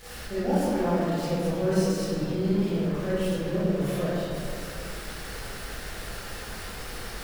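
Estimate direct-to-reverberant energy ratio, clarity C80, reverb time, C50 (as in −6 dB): −13.5 dB, −2.5 dB, 2.4 s, −5.5 dB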